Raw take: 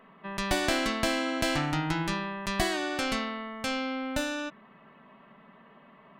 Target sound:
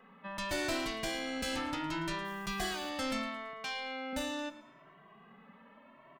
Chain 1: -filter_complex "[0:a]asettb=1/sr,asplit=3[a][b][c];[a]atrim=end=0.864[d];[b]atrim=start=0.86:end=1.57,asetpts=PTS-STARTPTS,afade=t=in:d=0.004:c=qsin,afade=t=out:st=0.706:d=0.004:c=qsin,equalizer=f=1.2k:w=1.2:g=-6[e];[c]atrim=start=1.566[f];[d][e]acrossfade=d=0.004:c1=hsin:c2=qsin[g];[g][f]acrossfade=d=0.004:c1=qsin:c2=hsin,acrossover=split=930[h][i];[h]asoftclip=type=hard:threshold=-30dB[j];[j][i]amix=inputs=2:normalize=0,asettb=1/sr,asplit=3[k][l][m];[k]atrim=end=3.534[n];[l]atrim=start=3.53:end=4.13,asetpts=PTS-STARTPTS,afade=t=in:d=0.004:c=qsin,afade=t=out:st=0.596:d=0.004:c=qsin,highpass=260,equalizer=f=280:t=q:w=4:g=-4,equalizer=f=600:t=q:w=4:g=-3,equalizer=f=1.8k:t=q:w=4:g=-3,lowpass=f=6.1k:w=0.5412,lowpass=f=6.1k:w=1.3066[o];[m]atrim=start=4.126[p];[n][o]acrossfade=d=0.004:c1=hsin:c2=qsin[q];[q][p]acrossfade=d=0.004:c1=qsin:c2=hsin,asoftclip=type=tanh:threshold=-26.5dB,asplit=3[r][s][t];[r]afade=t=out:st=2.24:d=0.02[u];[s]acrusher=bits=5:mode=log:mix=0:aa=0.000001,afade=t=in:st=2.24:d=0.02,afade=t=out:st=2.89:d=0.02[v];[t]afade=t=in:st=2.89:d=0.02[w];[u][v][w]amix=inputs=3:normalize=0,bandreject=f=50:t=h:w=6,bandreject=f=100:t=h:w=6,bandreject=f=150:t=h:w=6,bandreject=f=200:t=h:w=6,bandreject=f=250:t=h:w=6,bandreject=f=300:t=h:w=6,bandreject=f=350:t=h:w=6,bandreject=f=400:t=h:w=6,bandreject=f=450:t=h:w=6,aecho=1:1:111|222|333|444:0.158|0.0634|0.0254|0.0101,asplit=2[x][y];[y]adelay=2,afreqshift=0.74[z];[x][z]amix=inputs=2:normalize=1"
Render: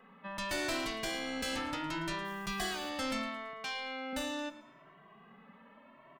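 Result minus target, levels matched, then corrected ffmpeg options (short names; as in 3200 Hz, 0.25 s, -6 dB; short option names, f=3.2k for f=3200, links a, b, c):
hard clip: distortion +18 dB
-filter_complex "[0:a]asettb=1/sr,asplit=3[a][b][c];[a]atrim=end=0.864[d];[b]atrim=start=0.86:end=1.57,asetpts=PTS-STARTPTS,afade=t=in:d=0.004:c=qsin,afade=t=out:st=0.706:d=0.004:c=qsin,equalizer=f=1.2k:w=1.2:g=-6[e];[c]atrim=start=1.566[f];[d][e]acrossfade=d=0.004:c1=hsin:c2=qsin[g];[g][f]acrossfade=d=0.004:c1=qsin:c2=hsin,acrossover=split=930[h][i];[h]asoftclip=type=hard:threshold=-19.5dB[j];[j][i]amix=inputs=2:normalize=0,asettb=1/sr,asplit=3[k][l][m];[k]atrim=end=3.534[n];[l]atrim=start=3.53:end=4.13,asetpts=PTS-STARTPTS,afade=t=in:d=0.004:c=qsin,afade=t=out:st=0.596:d=0.004:c=qsin,highpass=260,equalizer=f=280:t=q:w=4:g=-4,equalizer=f=600:t=q:w=4:g=-3,equalizer=f=1.8k:t=q:w=4:g=-3,lowpass=f=6.1k:w=0.5412,lowpass=f=6.1k:w=1.3066[o];[m]atrim=start=4.126[p];[n][o]acrossfade=d=0.004:c1=hsin:c2=qsin[q];[q][p]acrossfade=d=0.004:c1=qsin:c2=hsin,asoftclip=type=tanh:threshold=-26.5dB,asplit=3[r][s][t];[r]afade=t=out:st=2.24:d=0.02[u];[s]acrusher=bits=5:mode=log:mix=0:aa=0.000001,afade=t=in:st=2.24:d=0.02,afade=t=out:st=2.89:d=0.02[v];[t]afade=t=in:st=2.89:d=0.02[w];[u][v][w]amix=inputs=3:normalize=0,bandreject=f=50:t=h:w=6,bandreject=f=100:t=h:w=6,bandreject=f=150:t=h:w=6,bandreject=f=200:t=h:w=6,bandreject=f=250:t=h:w=6,bandreject=f=300:t=h:w=6,bandreject=f=350:t=h:w=6,bandreject=f=400:t=h:w=6,bandreject=f=450:t=h:w=6,aecho=1:1:111|222|333|444:0.158|0.0634|0.0254|0.0101,asplit=2[x][y];[y]adelay=2,afreqshift=0.74[z];[x][z]amix=inputs=2:normalize=1"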